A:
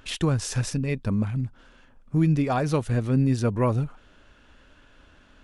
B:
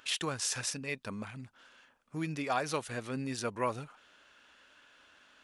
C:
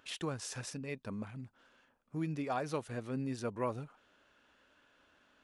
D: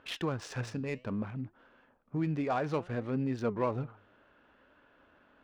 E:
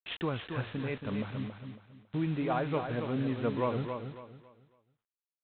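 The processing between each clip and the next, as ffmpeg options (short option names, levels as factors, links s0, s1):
-af "highpass=f=1300:p=1"
-af "tiltshelf=f=970:g=5.5,volume=0.562"
-filter_complex "[0:a]asplit=2[s0][s1];[s1]alimiter=level_in=3.16:limit=0.0631:level=0:latency=1:release=33,volume=0.316,volume=0.841[s2];[s0][s2]amix=inputs=2:normalize=0,adynamicsmooth=sensitivity=7:basefreq=2000,flanger=delay=1.8:depth=8.3:regen=89:speed=0.62:shape=triangular,volume=2.11"
-af "aresample=8000,acrusher=bits=7:mix=0:aa=0.000001,aresample=44100,aecho=1:1:276|552|828|1104:0.447|0.134|0.0402|0.0121"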